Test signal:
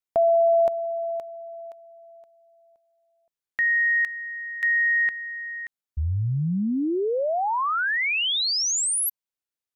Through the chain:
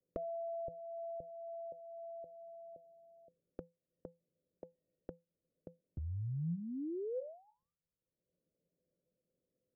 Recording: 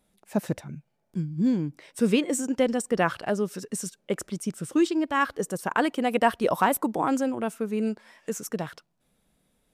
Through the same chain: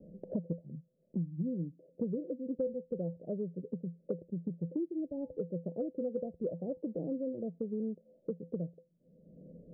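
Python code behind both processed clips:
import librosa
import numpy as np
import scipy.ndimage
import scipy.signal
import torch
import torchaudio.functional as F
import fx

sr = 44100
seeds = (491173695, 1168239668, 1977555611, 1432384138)

y = fx.wiener(x, sr, points=25)
y = scipy.signal.sosfilt(scipy.signal.butter(12, 610.0, 'lowpass', fs=sr, output='sos'), y)
y = fx.low_shelf(y, sr, hz=71.0, db=-12.0)
y = fx.comb_fb(y, sr, f0_hz=170.0, decay_s=0.2, harmonics='odd', damping=0.0, mix_pct=80)
y = fx.band_squash(y, sr, depth_pct=100)
y = y * 10.0 ** (1.0 / 20.0)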